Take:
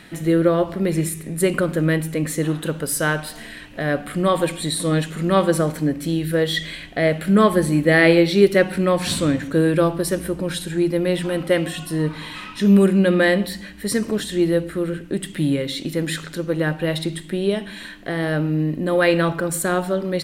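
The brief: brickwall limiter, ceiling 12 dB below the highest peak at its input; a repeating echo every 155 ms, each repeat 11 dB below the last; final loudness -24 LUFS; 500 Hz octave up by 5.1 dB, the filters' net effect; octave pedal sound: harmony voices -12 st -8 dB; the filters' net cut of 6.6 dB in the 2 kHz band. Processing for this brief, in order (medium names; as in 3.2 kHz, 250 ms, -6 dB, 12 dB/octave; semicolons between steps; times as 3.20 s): peaking EQ 500 Hz +6.5 dB; peaking EQ 2 kHz -8.5 dB; peak limiter -11.5 dBFS; feedback delay 155 ms, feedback 28%, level -11 dB; harmony voices -12 st -8 dB; trim -3.5 dB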